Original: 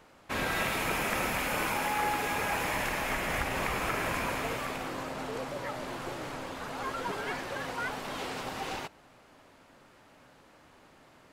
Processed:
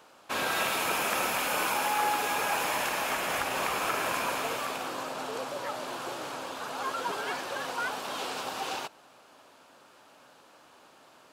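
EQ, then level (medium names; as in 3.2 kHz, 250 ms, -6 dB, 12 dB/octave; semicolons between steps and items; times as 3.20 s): high-pass 620 Hz 6 dB/octave; peaking EQ 2 kHz -8.5 dB 0.41 oct; +5.0 dB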